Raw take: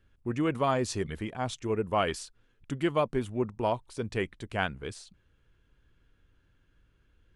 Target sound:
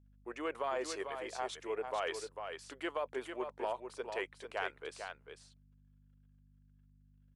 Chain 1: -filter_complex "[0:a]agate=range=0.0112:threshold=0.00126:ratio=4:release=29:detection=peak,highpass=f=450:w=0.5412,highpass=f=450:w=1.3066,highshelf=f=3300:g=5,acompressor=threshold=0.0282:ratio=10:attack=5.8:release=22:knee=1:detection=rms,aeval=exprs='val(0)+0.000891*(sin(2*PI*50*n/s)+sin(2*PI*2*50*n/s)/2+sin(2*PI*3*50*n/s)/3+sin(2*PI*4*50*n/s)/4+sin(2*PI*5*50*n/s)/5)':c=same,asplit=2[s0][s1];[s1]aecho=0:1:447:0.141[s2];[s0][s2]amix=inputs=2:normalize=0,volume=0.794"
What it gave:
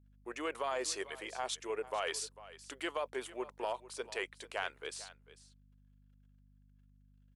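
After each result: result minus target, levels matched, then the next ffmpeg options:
8 kHz band +7.5 dB; echo-to-direct -10 dB
-filter_complex "[0:a]agate=range=0.0112:threshold=0.00126:ratio=4:release=29:detection=peak,highpass=f=450:w=0.5412,highpass=f=450:w=1.3066,highshelf=f=3300:g=-6.5,acompressor=threshold=0.0282:ratio=10:attack=5.8:release=22:knee=1:detection=rms,aeval=exprs='val(0)+0.000891*(sin(2*PI*50*n/s)+sin(2*PI*2*50*n/s)/2+sin(2*PI*3*50*n/s)/3+sin(2*PI*4*50*n/s)/4+sin(2*PI*5*50*n/s)/5)':c=same,asplit=2[s0][s1];[s1]aecho=0:1:447:0.141[s2];[s0][s2]amix=inputs=2:normalize=0,volume=0.794"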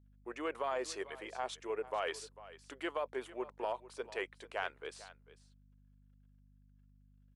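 echo-to-direct -10 dB
-filter_complex "[0:a]agate=range=0.0112:threshold=0.00126:ratio=4:release=29:detection=peak,highpass=f=450:w=0.5412,highpass=f=450:w=1.3066,highshelf=f=3300:g=-6.5,acompressor=threshold=0.0282:ratio=10:attack=5.8:release=22:knee=1:detection=rms,aeval=exprs='val(0)+0.000891*(sin(2*PI*50*n/s)+sin(2*PI*2*50*n/s)/2+sin(2*PI*3*50*n/s)/3+sin(2*PI*4*50*n/s)/4+sin(2*PI*5*50*n/s)/5)':c=same,asplit=2[s0][s1];[s1]aecho=0:1:447:0.447[s2];[s0][s2]amix=inputs=2:normalize=0,volume=0.794"

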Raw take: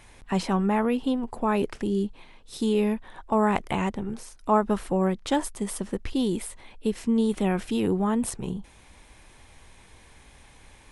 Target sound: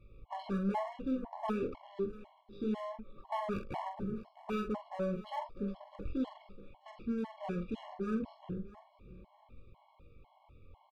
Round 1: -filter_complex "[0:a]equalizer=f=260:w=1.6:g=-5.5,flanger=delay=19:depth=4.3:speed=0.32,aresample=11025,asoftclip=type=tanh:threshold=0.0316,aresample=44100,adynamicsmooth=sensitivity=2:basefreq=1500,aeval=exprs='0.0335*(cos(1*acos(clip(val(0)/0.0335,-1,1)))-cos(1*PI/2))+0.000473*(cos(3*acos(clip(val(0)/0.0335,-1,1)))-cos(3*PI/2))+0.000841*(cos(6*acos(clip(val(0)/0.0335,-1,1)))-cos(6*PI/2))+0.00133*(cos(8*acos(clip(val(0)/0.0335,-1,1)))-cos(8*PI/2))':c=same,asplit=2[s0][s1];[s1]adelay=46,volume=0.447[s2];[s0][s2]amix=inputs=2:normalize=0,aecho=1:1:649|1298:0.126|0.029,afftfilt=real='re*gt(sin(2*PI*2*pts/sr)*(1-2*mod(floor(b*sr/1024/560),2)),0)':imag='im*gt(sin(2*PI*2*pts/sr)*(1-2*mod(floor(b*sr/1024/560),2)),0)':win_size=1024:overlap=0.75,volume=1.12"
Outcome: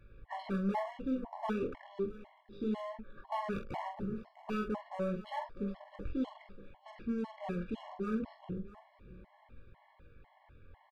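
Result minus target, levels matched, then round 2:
2 kHz band +2.5 dB
-filter_complex "[0:a]asuperstop=centerf=1700:order=20:qfactor=2,equalizer=f=260:w=1.6:g=-5.5,flanger=delay=19:depth=4.3:speed=0.32,aresample=11025,asoftclip=type=tanh:threshold=0.0316,aresample=44100,adynamicsmooth=sensitivity=2:basefreq=1500,aeval=exprs='0.0335*(cos(1*acos(clip(val(0)/0.0335,-1,1)))-cos(1*PI/2))+0.000473*(cos(3*acos(clip(val(0)/0.0335,-1,1)))-cos(3*PI/2))+0.000841*(cos(6*acos(clip(val(0)/0.0335,-1,1)))-cos(6*PI/2))+0.00133*(cos(8*acos(clip(val(0)/0.0335,-1,1)))-cos(8*PI/2))':c=same,asplit=2[s0][s1];[s1]adelay=46,volume=0.447[s2];[s0][s2]amix=inputs=2:normalize=0,aecho=1:1:649|1298:0.126|0.029,afftfilt=real='re*gt(sin(2*PI*2*pts/sr)*(1-2*mod(floor(b*sr/1024/560),2)),0)':imag='im*gt(sin(2*PI*2*pts/sr)*(1-2*mod(floor(b*sr/1024/560),2)),0)':win_size=1024:overlap=0.75,volume=1.12"

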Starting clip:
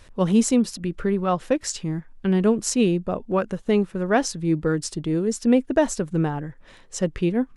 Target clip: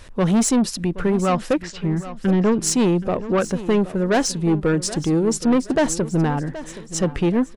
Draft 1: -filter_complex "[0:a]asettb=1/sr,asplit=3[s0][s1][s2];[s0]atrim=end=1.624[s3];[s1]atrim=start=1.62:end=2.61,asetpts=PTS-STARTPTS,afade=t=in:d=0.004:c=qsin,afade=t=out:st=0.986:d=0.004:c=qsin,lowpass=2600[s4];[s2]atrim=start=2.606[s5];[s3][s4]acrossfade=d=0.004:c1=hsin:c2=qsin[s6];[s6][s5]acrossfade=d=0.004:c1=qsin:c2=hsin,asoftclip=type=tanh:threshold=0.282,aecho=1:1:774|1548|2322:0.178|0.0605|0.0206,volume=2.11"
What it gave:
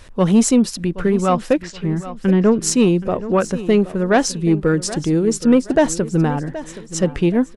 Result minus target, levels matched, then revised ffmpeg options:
saturation: distortion -10 dB
-filter_complex "[0:a]asettb=1/sr,asplit=3[s0][s1][s2];[s0]atrim=end=1.624[s3];[s1]atrim=start=1.62:end=2.61,asetpts=PTS-STARTPTS,afade=t=in:d=0.004:c=qsin,afade=t=out:st=0.986:d=0.004:c=qsin,lowpass=2600[s4];[s2]atrim=start=2.606[s5];[s3][s4]acrossfade=d=0.004:c1=hsin:c2=qsin[s6];[s6][s5]acrossfade=d=0.004:c1=qsin:c2=hsin,asoftclip=type=tanh:threshold=0.106,aecho=1:1:774|1548|2322:0.178|0.0605|0.0206,volume=2.11"

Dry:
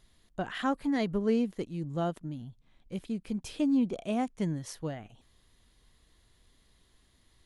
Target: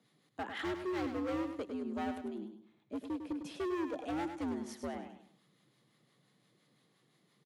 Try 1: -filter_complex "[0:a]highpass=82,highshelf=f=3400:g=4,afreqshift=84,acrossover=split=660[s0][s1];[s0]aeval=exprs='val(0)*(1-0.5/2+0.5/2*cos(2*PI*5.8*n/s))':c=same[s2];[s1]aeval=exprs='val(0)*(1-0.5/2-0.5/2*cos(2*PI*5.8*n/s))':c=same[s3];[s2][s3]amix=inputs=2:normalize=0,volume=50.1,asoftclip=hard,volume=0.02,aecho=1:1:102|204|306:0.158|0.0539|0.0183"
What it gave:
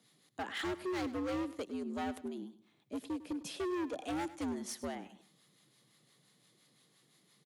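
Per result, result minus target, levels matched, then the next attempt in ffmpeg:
8 kHz band +8.5 dB; echo-to-direct -8 dB
-filter_complex "[0:a]highpass=82,highshelf=f=3400:g=-8,afreqshift=84,acrossover=split=660[s0][s1];[s0]aeval=exprs='val(0)*(1-0.5/2+0.5/2*cos(2*PI*5.8*n/s))':c=same[s2];[s1]aeval=exprs='val(0)*(1-0.5/2-0.5/2*cos(2*PI*5.8*n/s))':c=same[s3];[s2][s3]amix=inputs=2:normalize=0,volume=50.1,asoftclip=hard,volume=0.02,aecho=1:1:102|204|306:0.158|0.0539|0.0183"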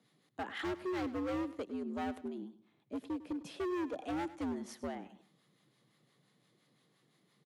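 echo-to-direct -8 dB
-filter_complex "[0:a]highpass=82,highshelf=f=3400:g=-8,afreqshift=84,acrossover=split=660[s0][s1];[s0]aeval=exprs='val(0)*(1-0.5/2+0.5/2*cos(2*PI*5.8*n/s))':c=same[s2];[s1]aeval=exprs='val(0)*(1-0.5/2-0.5/2*cos(2*PI*5.8*n/s))':c=same[s3];[s2][s3]amix=inputs=2:normalize=0,volume=50.1,asoftclip=hard,volume=0.02,aecho=1:1:102|204|306|408:0.398|0.135|0.046|0.0156"

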